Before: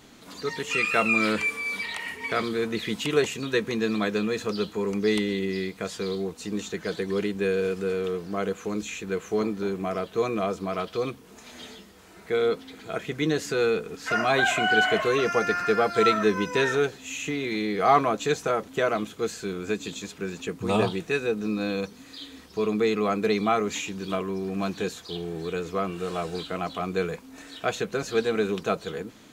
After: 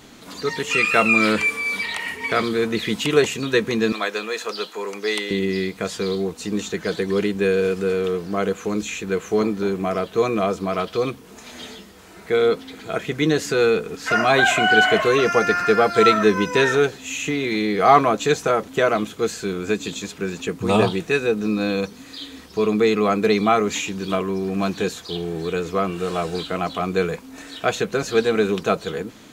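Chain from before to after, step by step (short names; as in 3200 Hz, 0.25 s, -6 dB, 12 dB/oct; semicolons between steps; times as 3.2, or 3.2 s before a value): 3.92–5.31 HPF 580 Hz 12 dB/oct; gain +6 dB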